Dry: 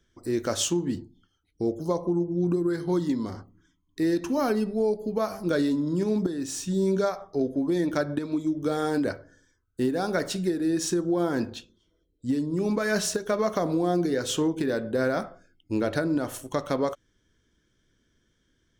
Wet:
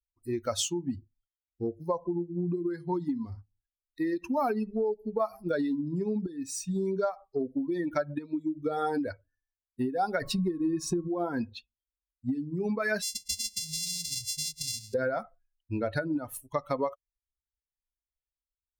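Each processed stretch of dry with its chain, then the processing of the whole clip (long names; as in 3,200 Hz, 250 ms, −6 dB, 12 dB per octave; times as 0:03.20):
0:10.21–0:11.07: low-shelf EQ 300 Hz +10.5 dB + steady tone 1,100 Hz −47 dBFS
0:13.02–0:14.94: samples sorted by size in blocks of 64 samples + drawn EQ curve 130 Hz 0 dB, 290 Hz −11 dB, 510 Hz −29 dB, 1,700 Hz −22 dB, 3,200 Hz −2 dB, 5,200 Hz +10 dB, 8,400 Hz +8 dB, 15,000 Hz −5 dB
whole clip: spectral dynamics exaggerated over time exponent 2; downward compressor, threshold −32 dBFS; dynamic equaliser 870 Hz, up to +6 dB, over −51 dBFS, Q 1.3; level +4.5 dB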